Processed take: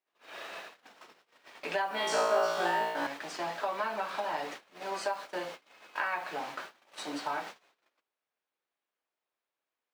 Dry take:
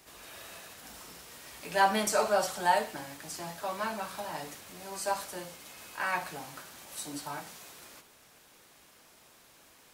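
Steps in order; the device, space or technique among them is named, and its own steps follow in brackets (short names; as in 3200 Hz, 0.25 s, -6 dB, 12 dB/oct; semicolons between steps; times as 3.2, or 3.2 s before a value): baby monitor (BPF 360–3300 Hz; compressor 12:1, threshold -37 dBFS, peak gain reduction 18 dB; white noise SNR 27 dB; gate -50 dBFS, range -37 dB); 1.89–3.07 flutter echo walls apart 3 m, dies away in 0.87 s; gain +8 dB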